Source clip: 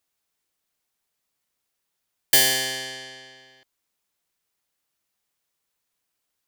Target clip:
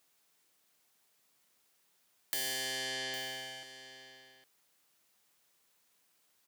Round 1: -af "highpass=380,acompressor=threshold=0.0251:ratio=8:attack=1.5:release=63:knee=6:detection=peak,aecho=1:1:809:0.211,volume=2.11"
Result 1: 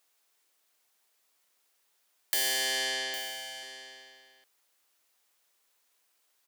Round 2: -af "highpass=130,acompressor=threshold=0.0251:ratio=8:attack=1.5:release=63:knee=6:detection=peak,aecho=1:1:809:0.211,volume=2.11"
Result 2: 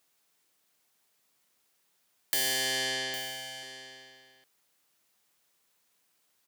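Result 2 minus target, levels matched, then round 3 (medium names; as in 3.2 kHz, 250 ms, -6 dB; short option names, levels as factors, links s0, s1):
compression: peak gain reduction -7 dB
-af "highpass=130,acompressor=threshold=0.01:ratio=8:attack=1.5:release=63:knee=6:detection=peak,aecho=1:1:809:0.211,volume=2.11"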